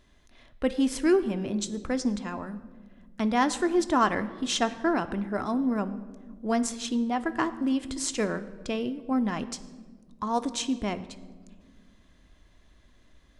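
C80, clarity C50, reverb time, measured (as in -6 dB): 16.0 dB, 14.5 dB, 1.6 s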